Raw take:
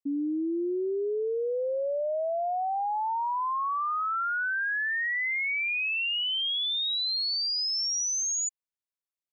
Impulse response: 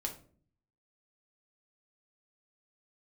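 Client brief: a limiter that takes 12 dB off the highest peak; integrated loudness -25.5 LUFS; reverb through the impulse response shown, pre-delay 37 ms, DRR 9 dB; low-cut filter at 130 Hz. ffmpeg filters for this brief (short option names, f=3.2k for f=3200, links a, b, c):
-filter_complex "[0:a]highpass=130,alimiter=level_in=14dB:limit=-24dB:level=0:latency=1,volume=-14dB,asplit=2[a][b];[1:a]atrim=start_sample=2205,adelay=37[c];[b][c]afir=irnorm=-1:irlink=0,volume=-9.5dB[d];[a][d]amix=inputs=2:normalize=0,volume=13.5dB"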